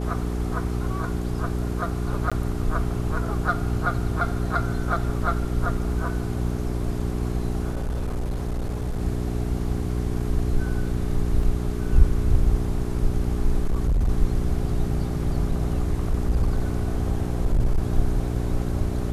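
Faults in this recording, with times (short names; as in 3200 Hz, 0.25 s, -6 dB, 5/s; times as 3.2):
hum 60 Hz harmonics 7 -27 dBFS
2.3–2.32 gap 16 ms
7.7–9.02 clipped -23 dBFS
11.43 gap 2.8 ms
13.64–14.09 clipped -17.5 dBFS
15.51–17.8 clipped -15.5 dBFS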